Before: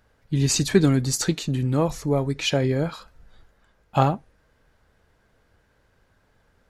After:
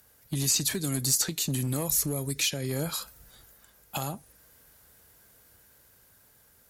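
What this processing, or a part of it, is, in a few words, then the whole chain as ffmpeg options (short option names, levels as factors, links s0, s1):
FM broadcast chain: -filter_complex "[0:a]highpass=51,dynaudnorm=f=610:g=5:m=3.76,acrossover=split=130|4700[s0][s1][s2];[s0]acompressor=threshold=0.02:ratio=4[s3];[s1]acompressor=threshold=0.0562:ratio=4[s4];[s2]acompressor=threshold=0.01:ratio=4[s5];[s3][s4][s5]amix=inputs=3:normalize=0,aemphasis=mode=production:type=50fm,alimiter=limit=0.133:level=0:latency=1:release=232,asoftclip=type=hard:threshold=0.0944,lowpass=f=15000:w=0.5412,lowpass=f=15000:w=1.3066,aemphasis=mode=production:type=50fm,asettb=1/sr,asplit=3[s6][s7][s8];[s6]atrim=end=1.894[s9];[s7]atrim=start=1.89:end=2.71,asetpts=PTS-STARTPTS,afade=t=in:d=0.004:c=qsin,afade=t=out:st=0.816:d=0.004:c=qsin,equalizer=f=840:w=1.4:g=-6[s10];[s8]atrim=start=2.706[s11];[s9][s10]acrossfade=d=0.004:c1=hsin:c2=qsin[s12];[s12][s11]acrossfade=d=0.004:c1=qsin:c2=hsin,volume=0.75"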